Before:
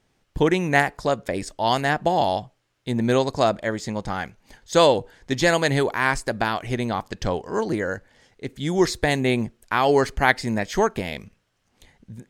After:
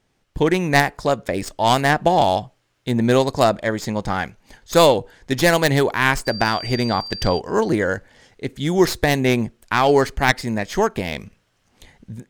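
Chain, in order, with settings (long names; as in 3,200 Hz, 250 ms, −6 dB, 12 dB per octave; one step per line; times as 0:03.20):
stylus tracing distortion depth 0.11 ms
automatic gain control gain up to 6 dB
0:06.25–0:07.38: steady tone 4,700 Hz −30 dBFS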